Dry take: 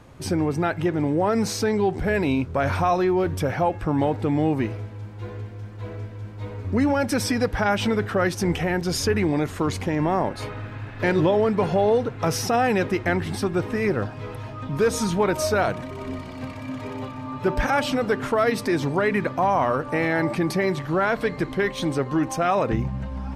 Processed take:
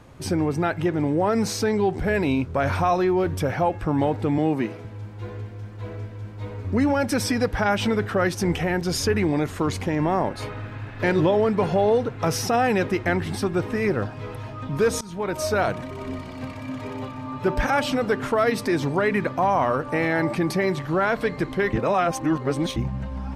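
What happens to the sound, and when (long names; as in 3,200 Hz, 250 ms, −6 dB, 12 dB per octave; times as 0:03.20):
0:04.38–0:04.85: high-pass filter 140 Hz 24 dB per octave
0:15.01–0:15.78: fade in equal-power, from −23 dB
0:21.73–0:22.76: reverse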